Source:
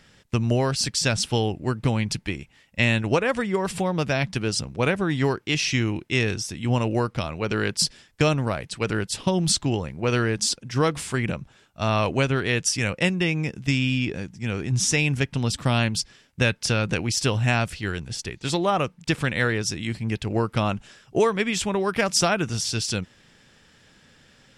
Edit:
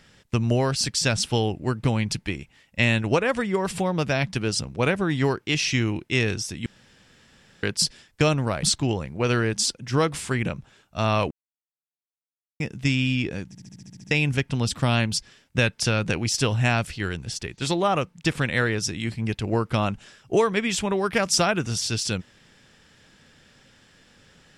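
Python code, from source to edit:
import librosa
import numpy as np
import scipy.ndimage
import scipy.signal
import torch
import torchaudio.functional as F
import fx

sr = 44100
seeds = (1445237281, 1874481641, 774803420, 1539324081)

y = fx.edit(x, sr, fx.room_tone_fill(start_s=6.66, length_s=0.97),
    fx.cut(start_s=8.63, length_s=0.83),
    fx.silence(start_s=12.14, length_s=1.29),
    fx.stutter_over(start_s=14.31, slice_s=0.07, count=9), tone=tone)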